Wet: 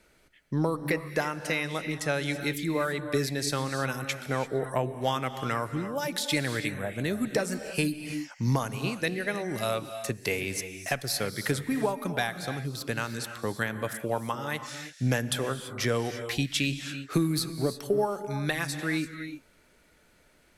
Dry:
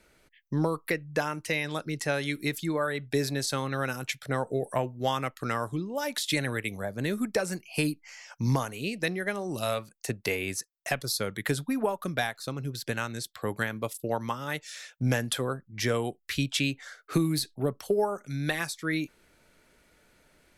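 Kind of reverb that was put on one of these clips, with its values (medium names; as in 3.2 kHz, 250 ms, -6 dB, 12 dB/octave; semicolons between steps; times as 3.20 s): gated-style reverb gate 360 ms rising, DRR 9 dB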